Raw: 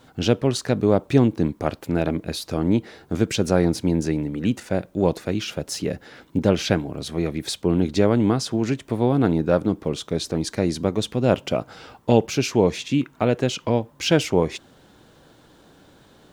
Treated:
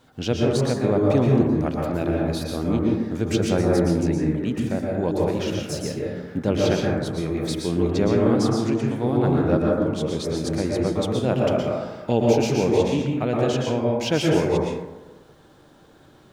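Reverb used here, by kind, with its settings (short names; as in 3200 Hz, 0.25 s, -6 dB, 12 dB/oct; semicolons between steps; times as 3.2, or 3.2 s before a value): plate-style reverb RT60 1.2 s, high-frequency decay 0.3×, pre-delay 0.105 s, DRR -2.5 dB; gain -5 dB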